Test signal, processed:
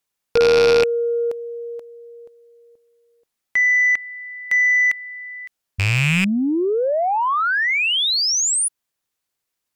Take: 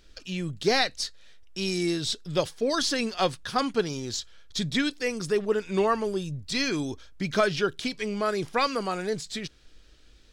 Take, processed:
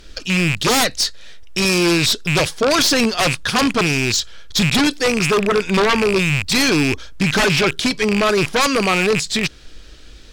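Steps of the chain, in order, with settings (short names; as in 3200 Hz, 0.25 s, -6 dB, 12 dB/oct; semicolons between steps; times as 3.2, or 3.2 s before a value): rattling part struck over -40 dBFS, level -20 dBFS; sine folder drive 11 dB, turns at -11.5 dBFS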